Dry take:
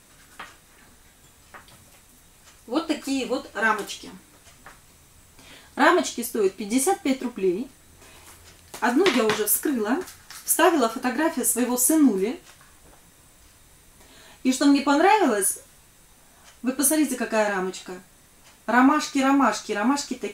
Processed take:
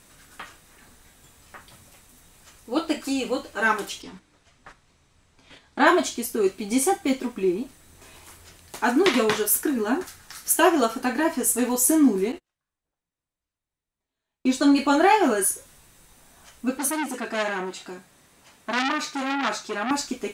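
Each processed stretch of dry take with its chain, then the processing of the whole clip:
4.02–5.87 gate -47 dBFS, range -7 dB + LPF 5800 Hz
12.32–14.76 gate -41 dBFS, range -35 dB + high shelf 7900 Hz -9.5 dB
16.78–19.91 HPF 120 Hz 6 dB/oct + high shelf 7800 Hz -6.5 dB + core saturation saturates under 3600 Hz
whole clip: dry

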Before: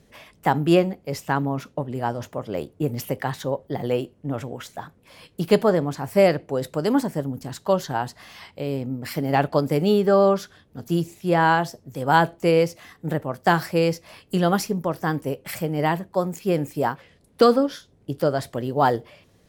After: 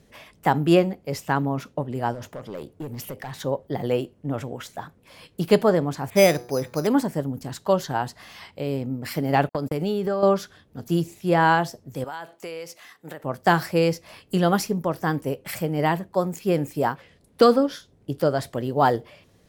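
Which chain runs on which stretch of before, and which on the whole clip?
2.14–3.36 compressor 2:1, threshold -31 dBFS + hard clip -28.5 dBFS
6.1–6.87 de-hum 121.3 Hz, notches 15 + careless resampling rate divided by 8×, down filtered, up hold + bell 2400 Hz +11.5 dB 0.34 oct
9.49–10.23 gate -28 dBFS, range -50 dB + compressor, threshold -21 dBFS
12.04–13.24 HPF 890 Hz 6 dB/oct + compressor, threshold -31 dBFS
whole clip: dry

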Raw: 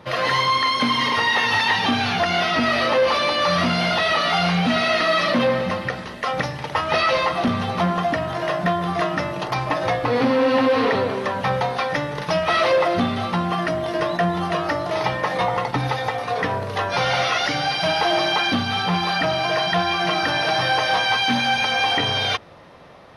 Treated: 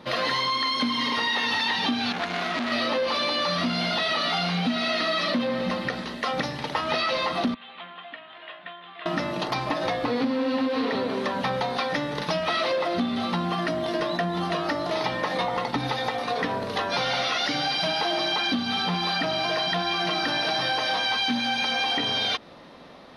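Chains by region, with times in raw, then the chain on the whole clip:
2.12–2.72 band shelf 3700 Hz -9 dB 1.3 oct + core saturation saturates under 2300 Hz
7.54–9.06 steep low-pass 3300 Hz 48 dB/oct + differentiator
whole clip: fifteen-band EQ 100 Hz -10 dB, 250 Hz +8 dB, 4000 Hz +7 dB; compressor, threshold -20 dBFS; gain -2.5 dB

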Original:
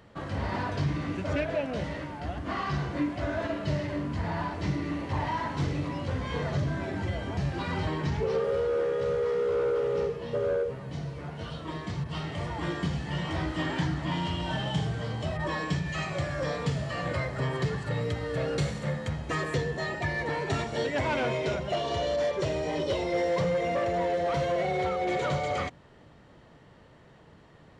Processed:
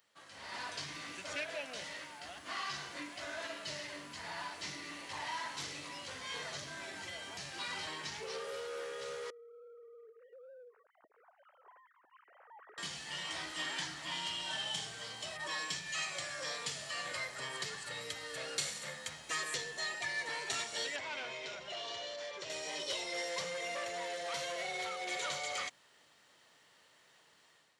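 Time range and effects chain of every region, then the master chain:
9.3–12.78 sine-wave speech + LPF 1500 Hz 24 dB/oct + compressor 16:1, threshold -37 dBFS
20.96–22.5 compressor 3:1, threshold -29 dBFS + air absorption 100 m
whole clip: differentiator; AGC gain up to 10 dB; gain -2.5 dB

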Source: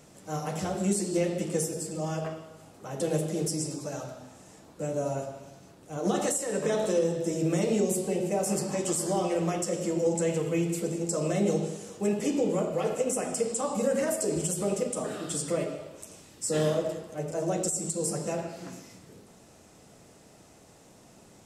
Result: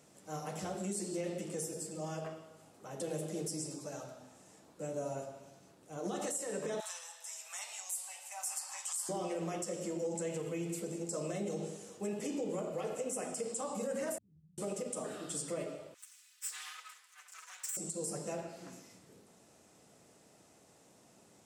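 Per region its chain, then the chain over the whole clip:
6.8–9.09 steep high-pass 800 Hz 48 dB/oct + high shelf 6700 Hz +7.5 dB
14.18–14.58 inverse Chebyshev low-pass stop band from 560 Hz, stop band 70 dB + compressor 2:1, threshold -58 dBFS
15.94–17.77 minimum comb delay 4 ms + HPF 1500 Hz 24 dB/oct
whole clip: limiter -21 dBFS; HPF 150 Hz 6 dB/oct; bell 9000 Hz +2 dB; gain -7.5 dB

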